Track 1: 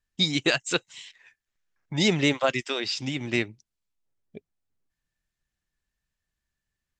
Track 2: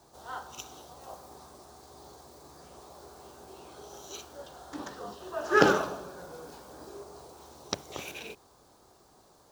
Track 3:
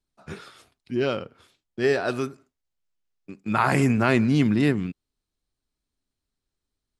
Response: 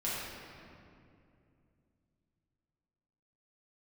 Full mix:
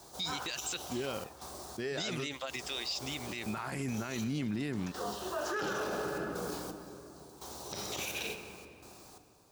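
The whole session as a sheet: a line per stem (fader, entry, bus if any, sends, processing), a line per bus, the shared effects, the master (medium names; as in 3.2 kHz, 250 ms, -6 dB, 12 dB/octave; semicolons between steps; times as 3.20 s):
-11.5 dB, 0.00 s, no send, peaking EQ 4.8 kHz +6 dB 2.2 oct
+2.0 dB, 0.00 s, send -13 dB, trance gate "xxxxxxx.xx...." 85 bpm -12 dB
-7.5 dB, 0.00 s, no send, none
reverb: on, RT60 2.5 s, pre-delay 5 ms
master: treble shelf 3 kHz +7.5 dB; peak limiter -27 dBFS, peak gain reduction 25 dB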